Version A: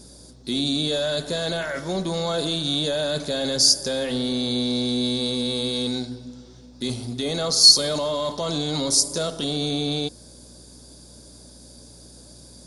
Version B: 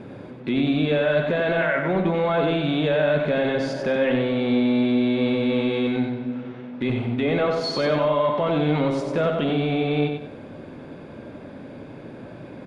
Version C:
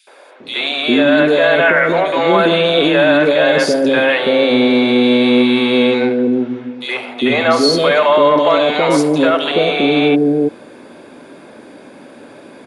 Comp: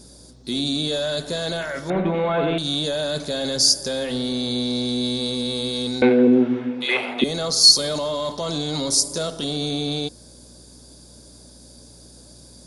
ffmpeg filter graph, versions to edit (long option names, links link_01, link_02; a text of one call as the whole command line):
ffmpeg -i take0.wav -i take1.wav -i take2.wav -filter_complex "[0:a]asplit=3[link_01][link_02][link_03];[link_01]atrim=end=1.902[link_04];[1:a]atrim=start=1.898:end=2.582[link_05];[link_02]atrim=start=2.578:end=6.022[link_06];[2:a]atrim=start=6.018:end=7.242[link_07];[link_03]atrim=start=7.238[link_08];[link_04][link_05]acrossfade=duration=0.004:curve1=hsin:curve2=hsin[link_09];[link_09][link_06]acrossfade=duration=0.004:curve1=hsin:curve2=hsin[link_10];[link_10][link_07]acrossfade=duration=0.004:curve1=hsin:curve2=hsin[link_11];[link_11][link_08]acrossfade=duration=0.004:curve1=hsin:curve2=hsin" out.wav